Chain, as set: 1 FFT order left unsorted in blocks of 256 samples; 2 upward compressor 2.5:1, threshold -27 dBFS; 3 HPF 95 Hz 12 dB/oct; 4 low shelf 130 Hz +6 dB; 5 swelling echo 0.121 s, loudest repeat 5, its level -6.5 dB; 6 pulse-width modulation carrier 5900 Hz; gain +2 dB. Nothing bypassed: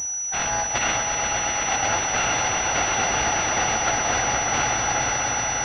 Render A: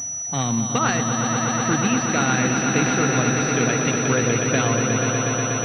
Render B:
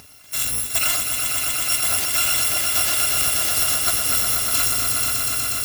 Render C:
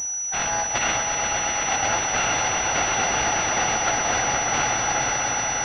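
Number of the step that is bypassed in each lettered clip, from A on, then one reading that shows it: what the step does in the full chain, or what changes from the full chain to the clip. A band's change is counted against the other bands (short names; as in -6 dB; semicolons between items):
1, 250 Hz band +15.0 dB; 6, 4 kHz band +9.5 dB; 4, 125 Hz band -1.5 dB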